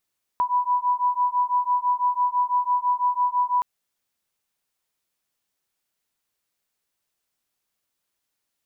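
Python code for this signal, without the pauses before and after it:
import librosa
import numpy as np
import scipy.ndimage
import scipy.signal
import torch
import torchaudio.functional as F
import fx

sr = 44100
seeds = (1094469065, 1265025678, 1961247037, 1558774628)

y = fx.two_tone_beats(sr, length_s=3.22, hz=984.0, beat_hz=6.0, level_db=-22.5)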